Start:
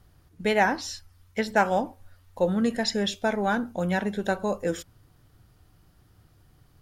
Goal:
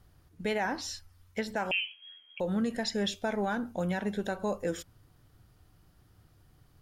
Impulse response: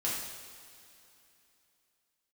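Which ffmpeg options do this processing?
-filter_complex "[0:a]alimiter=limit=-19dB:level=0:latency=1:release=117,asettb=1/sr,asplit=3[a][b][c];[a]atrim=end=1.714[d];[b]atrim=start=1.71:end=2.4,asetpts=PTS-STARTPTS,afade=t=in:d=0.004:c=qsin,afade=t=out:st=0.686:d=0.004:c=qsin,lowpass=f=2.8k:t=q:w=0.5098,lowpass=f=2.8k:t=q:w=0.6013,lowpass=f=2.8k:t=q:w=0.9,lowpass=f=2.8k:t=q:w=2.563,afreqshift=-3300[e];[c]atrim=start=2.396[f];[d][e]acrossfade=d=0.004:c1=hsin:c2=qsin[g];[g][f]acrossfade=d=0.004:c1=qsin:c2=hsin,volume=-3dB"

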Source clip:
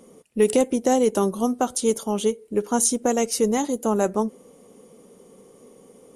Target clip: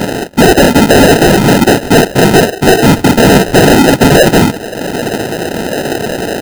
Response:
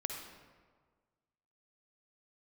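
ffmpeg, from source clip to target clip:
-filter_complex "[0:a]bandpass=f=270:t=q:w=0.54:csg=0,aecho=1:1:22|39:0.376|0.501,asplit=2[a][b];[b]asoftclip=type=tanh:threshold=-23dB,volume=-7dB[c];[a][c]amix=inputs=2:normalize=0,highpass=f=170:w=0.5412,highpass=f=170:w=1.3066,acompressor=mode=upward:threshold=-31dB:ratio=2.5,asetrate=42336,aresample=44100,afftfilt=real='hypot(re,im)*cos(2*PI*random(0))':imag='hypot(re,im)*sin(2*PI*random(1))':win_size=512:overlap=0.75,acrusher=samples=39:mix=1:aa=0.000001,asoftclip=type=hard:threshold=-26.5dB,acrusher=bits=3:mode=log:mix=0:aa=0.000001,alimiter=level_in=31dB:limit=-1dB:release=50:level=0:latency=1,volume=-1dB"

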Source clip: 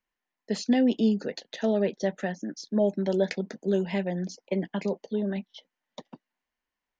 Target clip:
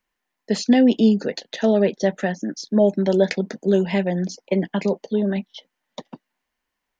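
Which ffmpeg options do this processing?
-filter_complex "[0:a]asettb=1/sr,asplit=3[a][b][c];[a]atrim=end=0.824[d];[b]atrim=start=0.82:end=1.22,asetpts=PTS-STARTPTS,afade=t=in:d=0.004:c=qsin,afade=t=out:st=0.396:d=0.004:c=qsin,bandreject=f=1.3k:w=9[e];[c]atrim=start=1.216[f];[d][e]acrossfade=d=0.004:c1=hsin:c2=qsin[g];[g][f]acrossfade=d=0.004:c1=qsin:c2=hsin,volume=7.5dB"

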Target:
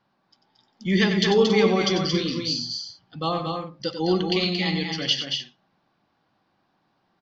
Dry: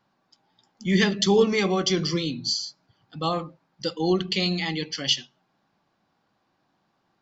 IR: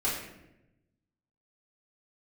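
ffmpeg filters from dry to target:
-filter_complex "[0:a]lowpass=f=5.5k:w=0.5412,lowpass=f=5.5k:w=1.3066,asplit=2[a][b];[b]aecho=0:1:93.29|227.4|277:0.355|0.562|0.251[c];[a][c]amix=inputs=2:normalize=0"

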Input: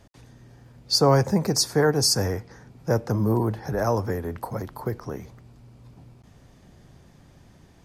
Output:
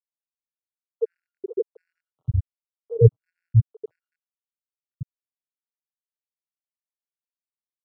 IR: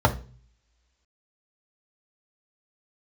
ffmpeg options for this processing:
-filter_complex "[0:a]highpass=85,asplit=2[a][b];[1:a]atrim=start_sample=2205,asetrate=22050,aresample=44100[c];[b][c]afir=irnorm=-1:irlink=0,volume=-25dB[d];[a][d]amix=inputs=2:normalize=0,aeval=exprs='val(0)+0.00355*(sin(2*PI*60*n/s)+sin(2*PI*2*60*n/s)/2+sin(2*PI*3*60*n/s)/3+sin(2*PI*4*60*n/s)/4+sin(2*PI*5*60*n/s)/5)':c=same,asuperstop=centerf=1700:order=20:qfactor=2.7,lowshelf=f=200:g=5,afftfilt=real='re*gte(hypot(re,im),1.58)':imag='im*gte(hypot(re,im),1.58)':win_size=1024:overlap=0.75,adynamicequalizer=threshold=0.0251:dfrequency=290:dqfactor=3.6:tfrequency=290:tqfactor=3.6:attack=5:release=100:ratio=0.375:range=1.5:mode=cutabove:tftype=bell,acrossover=split=660[e][f];[e]adelay=90[g];[g][f]amix=inputs=2:normalize=0,afftfilt=real='re*gt(sin(2*PI*1.4*pts/sr)*(1-2*mod(floor(b*sr/1024/1400),2)),0)':imag='im*gt(sin(2*PI*1.4*pts/sr)*(1-2*mod(floor(b*sr/1024/1400),2)),0)':win_size=1024:overlap=0.75,volume=4.5dB"

